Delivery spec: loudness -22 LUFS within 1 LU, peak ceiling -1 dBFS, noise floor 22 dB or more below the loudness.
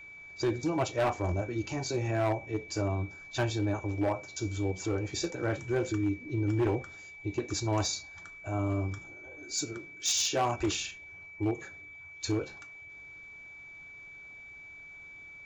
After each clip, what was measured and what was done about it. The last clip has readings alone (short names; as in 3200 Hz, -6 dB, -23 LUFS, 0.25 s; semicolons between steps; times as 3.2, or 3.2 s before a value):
clipped 1.1%; flat tops at -23.0 dBFS; steady tone 2300 Hz; tone level -46 dBFS; loudness -32.0 LUFS; peak -23.0 dBFS; loudness target -22.0 LUFS
-> clip repair -23 dBFS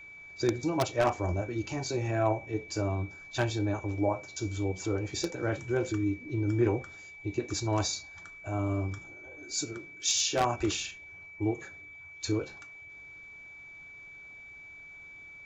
clipped 0.0%; steady tone 2300 Hz; tone level -46 dBFS
-> notch 2300 Hz, Q 30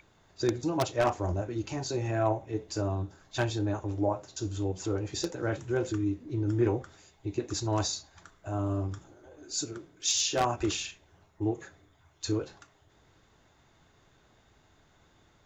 steady tone none; loudness -31.5 LUFS; peak -14.0 dBFS; loudness target -22.0 LUFS
-> gain +9.5 dB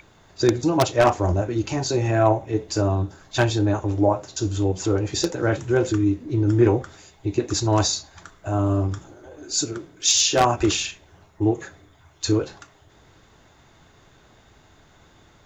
loudness -22.0 LUFS; peak -4.5 dBFS; noise floor -55 dBFS